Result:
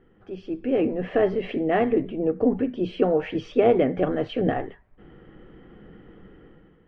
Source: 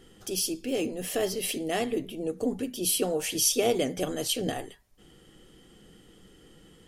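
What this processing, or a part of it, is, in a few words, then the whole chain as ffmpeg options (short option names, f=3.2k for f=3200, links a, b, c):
action camera in a waterproof case: -af "lowpass=f=2k:w=0.5412,lowpass=f=2k:w=1.3066,dynaudnorm=f=120:g=9:m=11dB,volume=-3dB" -ar 22050 -c:a aac -b:a 96k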